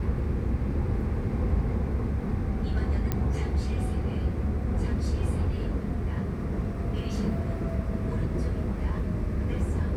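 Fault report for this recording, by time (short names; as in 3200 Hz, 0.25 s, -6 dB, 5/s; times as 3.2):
3.12 pop -13 dBFS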